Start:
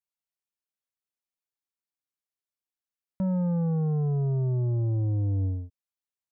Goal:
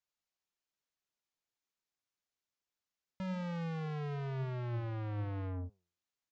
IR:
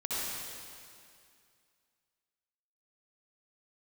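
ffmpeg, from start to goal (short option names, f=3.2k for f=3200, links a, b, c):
-af "aresample=16000,asoftclip=type=tanh:threshold=-40dB,aresample=44100,flanger=delay=6.4:depth=5.2:regen=84:speed=1.1:shape=sinusoidal,volume=7dB"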